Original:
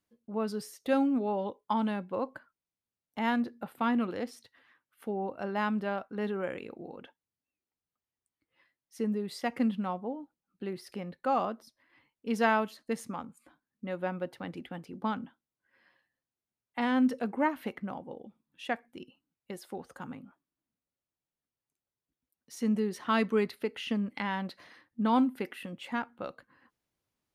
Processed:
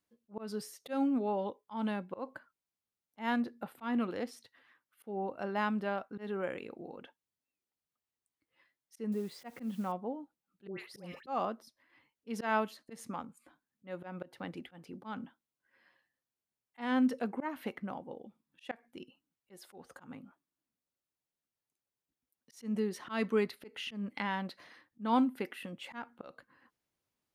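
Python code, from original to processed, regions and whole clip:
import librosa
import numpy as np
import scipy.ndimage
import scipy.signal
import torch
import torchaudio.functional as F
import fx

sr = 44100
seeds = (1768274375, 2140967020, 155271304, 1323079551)

y = fx.chain(x, sr, fx.high_shelf(hz=2800.0, db=-9.5),
    fx.quant_dither(seeds[0], bits=10, dither='triangular'), at=(9.12, 9.92))
y = fx.chain(y, sr, fx.dispersion(late='highs', ms=123.0, hz=1200.0),
    fx.sustainer(db_per_s=140.0), at=(10.67, 11.27))
y = fx.low_shelf(y, sr, hz=140.0, db=-4.5)
y = fx.auto_swell(y, sr, attack_ms=154.0)
y = F.gain(torch.from_numpy(y), -1.5).numpy()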